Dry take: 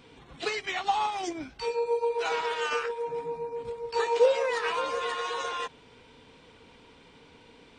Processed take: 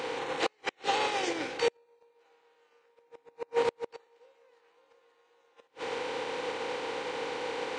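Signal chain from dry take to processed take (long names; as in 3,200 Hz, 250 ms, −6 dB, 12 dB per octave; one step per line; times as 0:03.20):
compressor on every frequency bin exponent 0.4
high-pass filter 120 Hz 12 dB per octave
four-comb reverb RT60 1.2 s, combs from 28 ms, DRR 14 dB
0:00.69–0:01.73: dynamic equaliser 980 Hz, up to −7 dB, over −37 dBFS, Q 1.3
gate with flip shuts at −15 dBFS, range −30 dB
expander for the loud parts 1.5 to 1, over −51 dBFS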